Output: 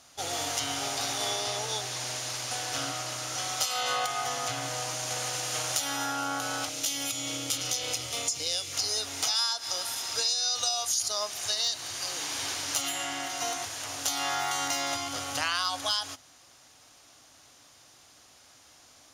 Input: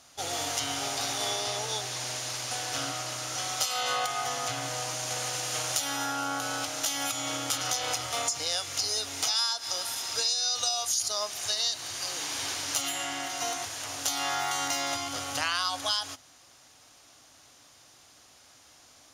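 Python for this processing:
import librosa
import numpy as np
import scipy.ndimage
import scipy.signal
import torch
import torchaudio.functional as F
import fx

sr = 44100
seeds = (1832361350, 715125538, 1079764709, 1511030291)

y = fx.band_shelf(x, sr, hz=1100.0, db=-9.0, octaves=1.7, at=(6.69, 8.73))
y = np.clip(y, -10.0 ** (-16.0 / 20.0), 10.0 ** (-16.0 / 20.0))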